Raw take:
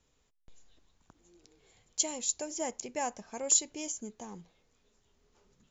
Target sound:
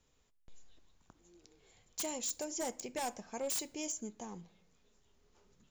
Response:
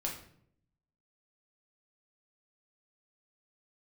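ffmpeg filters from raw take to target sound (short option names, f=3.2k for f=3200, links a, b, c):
-filter_complex "[0:a]acontrast=56,aeval=exprs='0.0708*(abs(mod(val(0)/0.0708+3,4)-2)-1)':c=same,asplit=2[a][b];[1:a]atrim=start_sample=2205[c];[b][c]afir=irnorm=-1:irlink=0,volume=-16.5dB[d];[a][d]amix=inputs=2:normalize=0,volume=-8.5dB"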